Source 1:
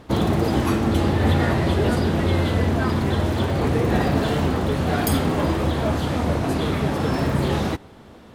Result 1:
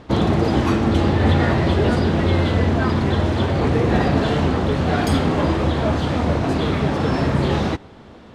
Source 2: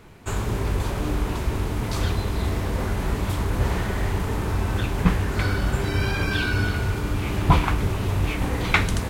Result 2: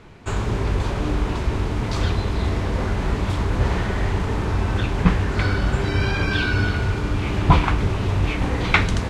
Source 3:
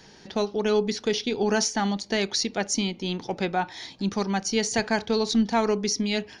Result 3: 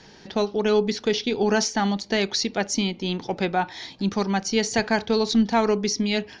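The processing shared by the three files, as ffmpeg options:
-af "lowpass=6100,volume=2.5dB"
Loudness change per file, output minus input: +2.5, +2.5, +2.0 LU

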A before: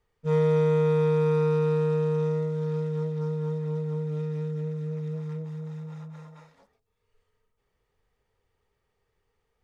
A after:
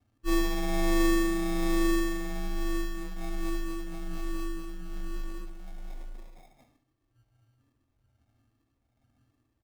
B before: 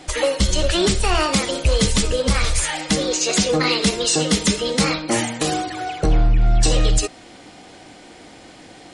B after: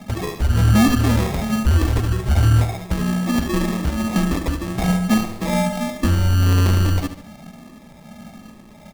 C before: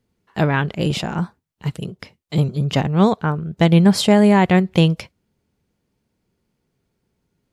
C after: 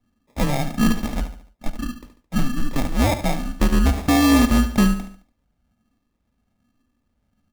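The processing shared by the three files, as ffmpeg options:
-filter_complex "[0:a]afftfilt=real='re*pow(10,10/40*sin(2*PI*(0.69*log(max(b,1)*sr/1024/100)/log(2)-(1.2)*(pts-256)/sr)))':imag='im*pow(10,10/40*sin(2*PI*(0.69*log(max(b,1)*sr/1024/100)/log(2)-(1.2)*(pts-256)/sr)))':win_size=1024:overlap=0.75,firequalizer=gain_entry='entry(100,0);entry(230,-11);entry(360,9);entry(520,-17);entry(770,-3);entry(1100,-4);entry(1700,-15);entry(2500,-18);entry(5700,-29);entry(11000,3)':delay=0.05:min_phase=1,asplit=2[link_01][link_02];[link_02]acrusher=bits=3:mode=log:mix=0:aa=0.000001,volume=-10dB[link_03];[link_01][link_03]amix=inputs=2:normalize=0,afreqshift=-130,acrusher=samples=30:mix=1:aa=0.000001,volume=11.5dB,asoftclip=hard,volume=-11.5dB,asplit=2[link_04][link_05];[link_05]aecho=0:1:72|144|216|288:0.282|0.121|0.0521|0.0224[link_06];[link_04][link_06]amix=inputs=2:normalize=0"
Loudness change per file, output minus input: −4.5, 0.0, −3.5 LU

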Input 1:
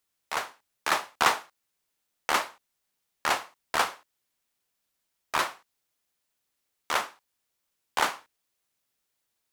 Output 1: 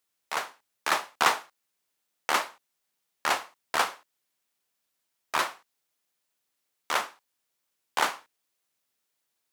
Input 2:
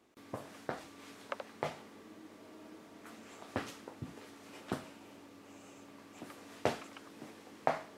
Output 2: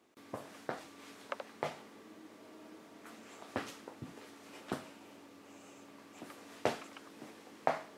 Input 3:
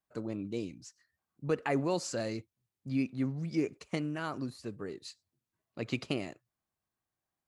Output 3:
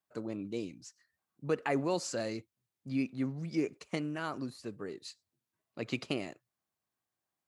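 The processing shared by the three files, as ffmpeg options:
-af "highpass=frequency=150:poles=1"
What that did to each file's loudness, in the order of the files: 0.0, −0.5, −1.0 LU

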